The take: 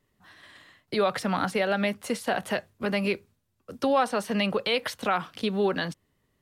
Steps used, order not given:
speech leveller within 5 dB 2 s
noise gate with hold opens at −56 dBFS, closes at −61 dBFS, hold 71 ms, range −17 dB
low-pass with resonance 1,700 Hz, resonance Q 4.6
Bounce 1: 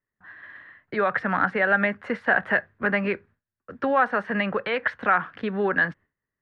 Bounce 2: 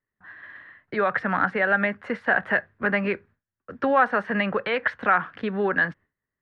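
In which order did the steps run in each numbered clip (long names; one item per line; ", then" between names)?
noise gate with hold, then speech leveller, then low-pass with resonance
noise gate with hold, then low-pass with resonance, then speech leveller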